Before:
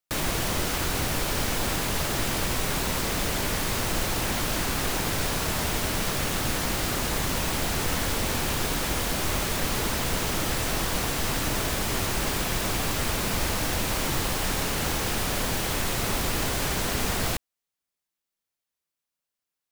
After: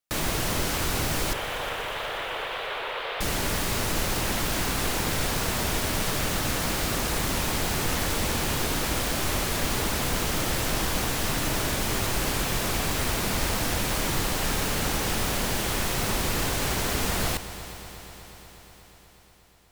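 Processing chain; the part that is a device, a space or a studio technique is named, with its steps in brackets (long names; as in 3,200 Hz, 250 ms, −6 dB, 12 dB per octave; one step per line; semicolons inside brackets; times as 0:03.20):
0:01.33–0:03.21: elliptic band-pass filter 460–3,400 Hz
multi-head tape echo (echo machine with several playback heads 121 ms, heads all three, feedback 74%, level −20 dB; tape wow and flutter)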